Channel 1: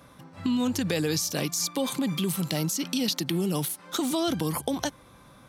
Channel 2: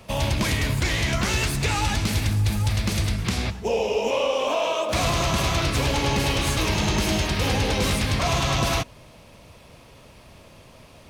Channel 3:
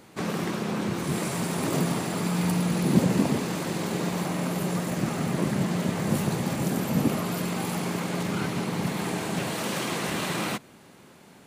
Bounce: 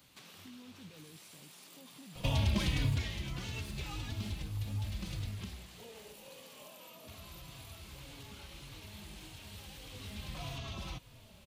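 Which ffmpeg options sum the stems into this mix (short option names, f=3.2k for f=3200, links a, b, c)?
-filter_complex "[0:a]alimiter=limit=-22.5dB:level=0:latency=1,volume=-18.5dB[a];[1:a]acompressor=threshold=-29dB:ratio=6,asplit=2[b][c];[c]adelay=3.5,afreqshift=-1.7[d];[b][d]amix=inputs=2:normalize=1,adelay=2150,volume=10dB,afade=t=out:st=2.8:d=0.35:silence=0.354813,afade=t=out:st=5.31:d=0.29:silence=0.266073,afade=t=in:st=9.85:d=0.61:silence=0.316228[e];[2:a]acompressor=threshold=-35dB:ratio=2,aderivative,volume=1dB[f];[a][f]amix=inputs=2:normalize=0,equalizer=f=9.4k:t=o:w=1.8:g=-6,acompressor=threshold=-52dB:ratio=4,volume=0dB[g];[e][g]amix=inputs=2:normalize=0,bass=f=250:g=6,treble=f=4k:g=-11,highshelf=f=2.5k:t=q:w=1.5:g=6.5"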